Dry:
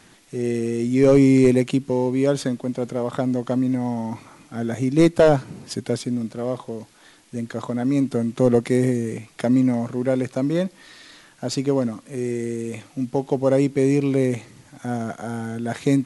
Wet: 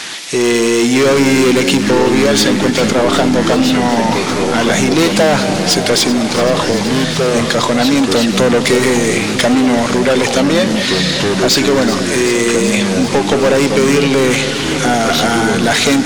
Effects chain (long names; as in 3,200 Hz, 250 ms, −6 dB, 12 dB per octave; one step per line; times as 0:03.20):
parametric band 4,200 Hz +8 dB 2.2 octaves
mid-hump overdrive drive 28 dB, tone 2,300 Hz, clips at −2.5 dBFS
on a send: delay that swaps between a low-pass and a high-pass 191 ms, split 870 Hz, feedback 87%, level −12.5 dB
on the sum: delay with pitch and tempo change per echo 650 ms, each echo −4 semitones, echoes 2, each echo −6 dB
high-shelf EQ 3,200 Hz +10.5 dB
downward compressor 2 to 1, threshold −12 dBFS, peak gain reduction 4.5 dB
level +1.5 dB